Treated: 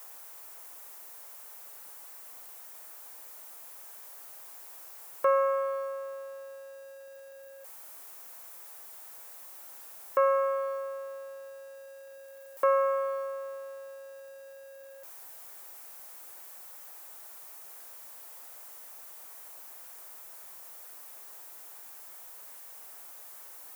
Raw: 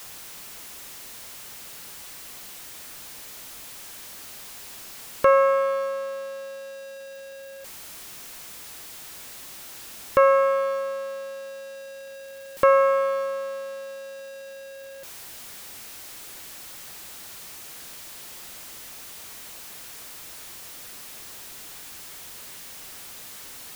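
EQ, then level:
Chebyshev high-pass filter 710 Hz, order 2
parametric band 3,600 Hz −14.5 dB 2.4 octaves
−2.0 dB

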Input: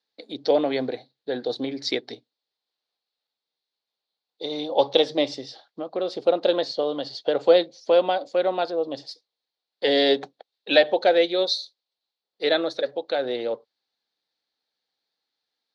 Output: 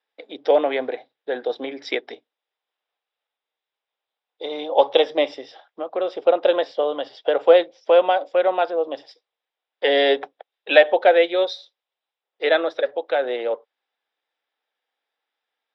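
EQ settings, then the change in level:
Savitzky-Golay smoothing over 25 samples
high-pass filter 490 Hz 12 dB per octave
+6.0 dB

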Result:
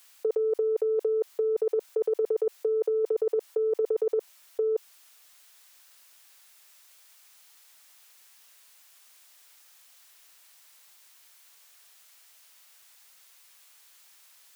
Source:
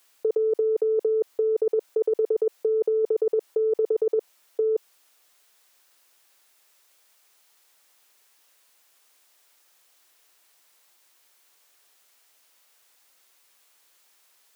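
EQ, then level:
high-pass filter 1,100 Hz 6 dB per octave
+5.5 dB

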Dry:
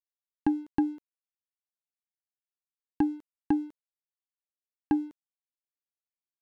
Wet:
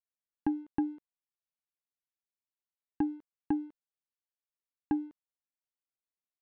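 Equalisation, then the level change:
Bessel low-pass filter 2,300 Hz, order 2
−4.5 dB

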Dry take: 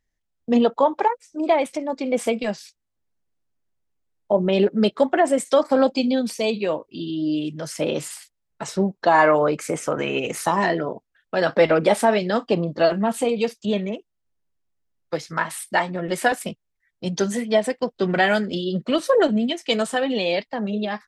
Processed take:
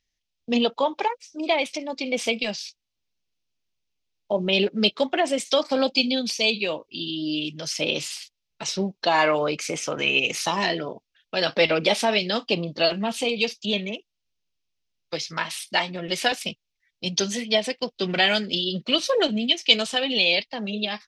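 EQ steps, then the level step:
flat-topped bell 3,800 Hz +14 dB
−5.0 dB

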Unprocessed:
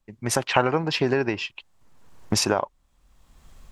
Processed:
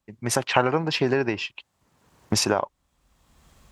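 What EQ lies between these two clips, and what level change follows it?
high-pass filter 60 Hz
0.0 dB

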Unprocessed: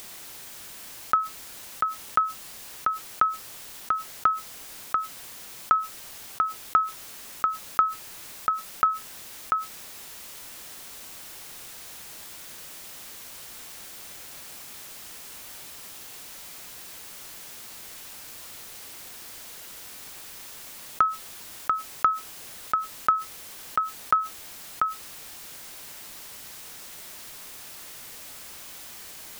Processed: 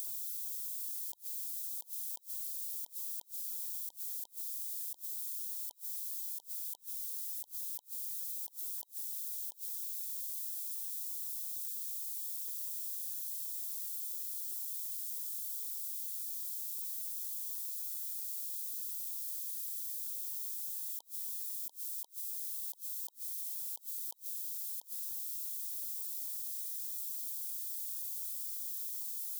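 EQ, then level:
linear-phase brick-wall band-stop 970–3,100 Hz
first difference
high-shelf EQ 5,700 Hz +8 dB
−8.0 dB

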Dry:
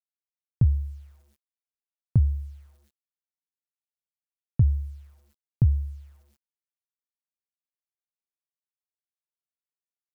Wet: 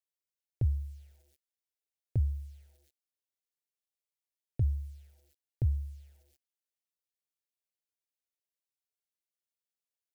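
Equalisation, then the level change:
low-shelf EQ 180 Hz −6.5 dB
phaser with its sweep stopped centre 460 Hz, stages 4
0.0 dB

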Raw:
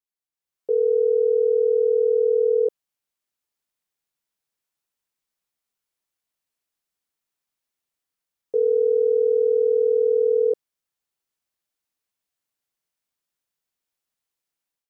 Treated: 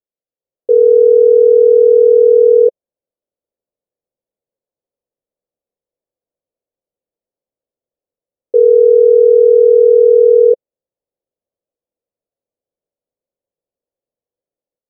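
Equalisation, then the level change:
low-pass with resonance 530 Hz, resonance Q 4.5
+1.5 dB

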